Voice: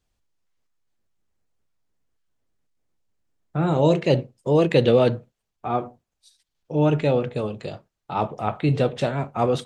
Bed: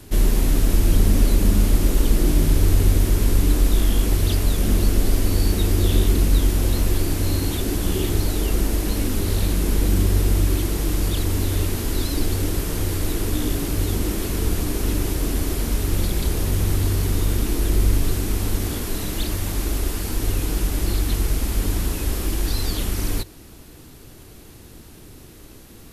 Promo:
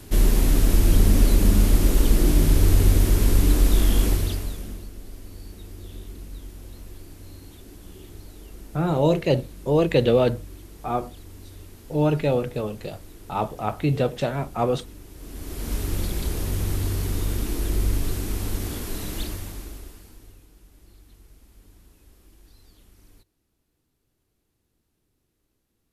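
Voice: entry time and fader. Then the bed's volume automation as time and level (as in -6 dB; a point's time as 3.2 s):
5.20 s, -1.5 dB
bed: 4.07 s -0.5 dB
4.9 s -21.5 dB
15.09 s -21.5 dB
15.73 s -5 dB
19.21 s -5 dB
20.5 s -30.5 dB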